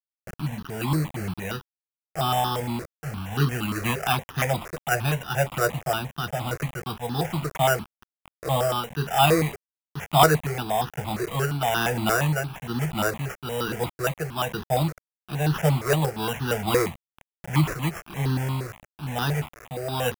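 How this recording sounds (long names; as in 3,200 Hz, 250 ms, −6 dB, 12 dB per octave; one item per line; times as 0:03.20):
a quantiser's noise floor 6 bits, dither none
tremolo triangle 1.1 Hz, depth 55%
aliases and images of a low sample rate 4,300 Hz, jitter 0%
notches that jump at a steady rate 8.6 Hz 860–2,200 Hz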